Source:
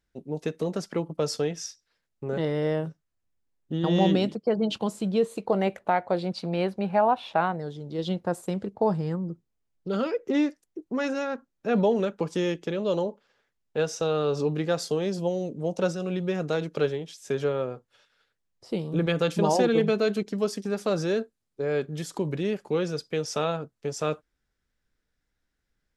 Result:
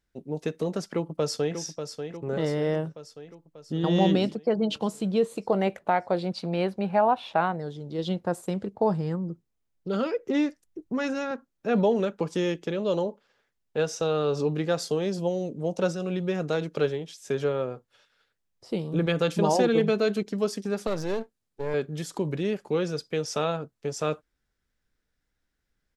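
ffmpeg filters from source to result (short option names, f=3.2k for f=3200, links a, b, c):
-filter_complex "[0:a]asplit=2[a][b];[b]afade=t=in:st=0.92:d=0.01,afade=t=out:st=1.57:d=0.01,aecho=0:1:590|1180|1770|2360|2950|3540|4130|4720:0.398107|0.238864|0.143319|0.0859911|0.0515947|0.0309568|0.0185741|0.0111445[c];[a][c]amix=inputs=2:normalize=0,asettb=1/sr,asplit=3[d][e][f];[d]atrim=end=10.054[g];[e]atrim=start=10.05:end=11.31,asetpts=PTS-STARTPTS,afade=t=in:d=0.004:c=qsin,afade=t=out:st=1.256:d=0.004:c=qsin,asubboost=boost=9:cutoff=180[h];[f]atrim=start=11.306[i];[g][h]acrossfade=d=0.004:c1=hsin:c2=qsin[j];[j][i]acrossfade=d=0.004:c1=qsin:c2=hsin,asettb=1/sr,asplit=3[k][l][m];[k]atrim=end=20.874[n];[l]atrim=start=20.87:end=21.74,asetpts=PTS-STARTPTS,afade=t=in:d=0.004:c=qsin,afade=t=out:st=0.866:d=0.004:c=qsin,aeval=exprs='if(lt(val(0),0),0.251*val(0),val(0))':c=same[o];[m]atrim=start=21.736[p];[n][o]acrossfade=d=0.004:c1=hsin:c2=qsin[q];[q][p]acrossfade=d=0.004:c1=qsin:c2=hsin"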